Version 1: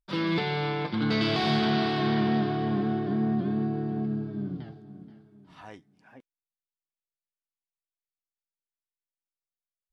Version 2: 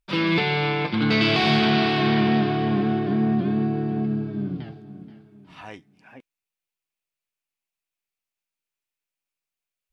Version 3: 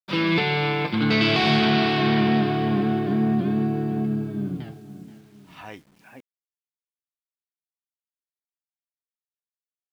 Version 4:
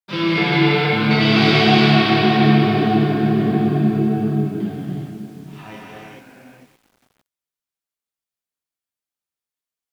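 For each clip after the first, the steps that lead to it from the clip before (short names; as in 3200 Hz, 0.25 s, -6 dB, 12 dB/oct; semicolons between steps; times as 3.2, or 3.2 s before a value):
bell 2500 Hz +8 dB 0.49 oct; gain +5 dB
bit-crush 10-bit
vibrato 1.6 Hz 31 cents; non-linear reverb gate 0.48 s flat, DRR -6 dB; lo-fi delay 0.569 s, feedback 35%, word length 7-bit, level -14 dB; gain -1.5 dB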